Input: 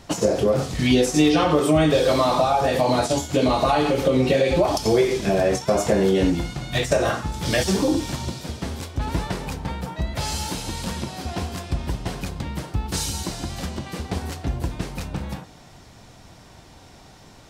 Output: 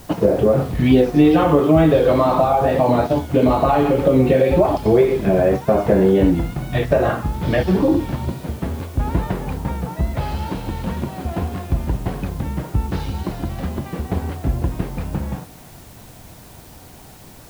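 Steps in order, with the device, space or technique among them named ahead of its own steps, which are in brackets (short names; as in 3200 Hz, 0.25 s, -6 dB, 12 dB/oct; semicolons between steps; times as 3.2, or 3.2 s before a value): LPF 4700 Hz; cassette deck with a dirty head (tape spacing loss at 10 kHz 35 dB; wow and flutter; white noise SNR 29 dB); gain +6 dB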